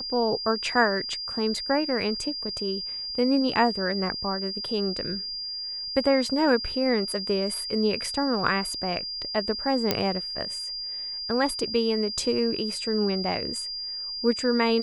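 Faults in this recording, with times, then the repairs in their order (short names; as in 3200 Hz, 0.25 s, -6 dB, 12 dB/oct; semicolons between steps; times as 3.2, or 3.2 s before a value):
tone 4800 Hz -31 dBFS
9.91 pop -6 dBFS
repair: de-click; notch 4800 Hz, Q 30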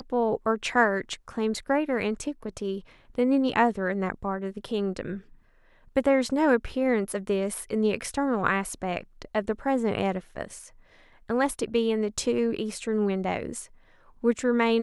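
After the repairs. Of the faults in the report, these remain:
none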